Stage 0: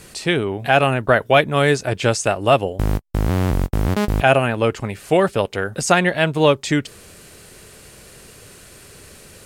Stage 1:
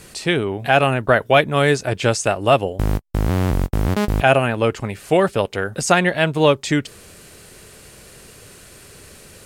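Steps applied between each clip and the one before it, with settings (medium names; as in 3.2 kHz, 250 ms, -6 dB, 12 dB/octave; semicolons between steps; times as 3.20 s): no audible change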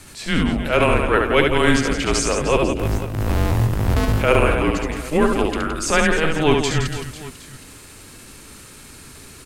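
frequency shift -160 Hz; transient shaper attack -10 dB, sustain +2 dB; reverse bouncing-ball echo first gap 70 ms, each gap 1.4×, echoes 5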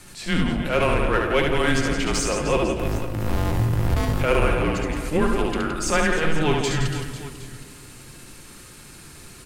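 in parallel at -5 dB: overload inside the chain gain 19 dB; on the sum: simulated room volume 2600 m³, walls mixed, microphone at 0.9 m; trim -7 dB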